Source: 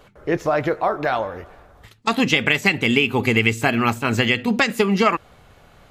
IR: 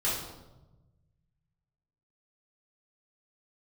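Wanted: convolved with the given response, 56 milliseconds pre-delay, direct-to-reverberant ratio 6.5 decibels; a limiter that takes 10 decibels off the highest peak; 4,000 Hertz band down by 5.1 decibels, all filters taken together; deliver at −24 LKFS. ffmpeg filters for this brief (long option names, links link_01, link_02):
-filter_complex "[0:a]equalizer=frequency=4000:width_type=o:gain=-8,alimiter=limit=-14dB:level=0:latency=1,asplit=2[link_01][link_02];[1:a]atrim=start_sample=2205,adelay=56[link_03];[link_02][link_03]afir=irnorm=-1:irlink=0,volume=-15dB[link_04];[link_01][link_04]amix=inputs=2:normalize=0"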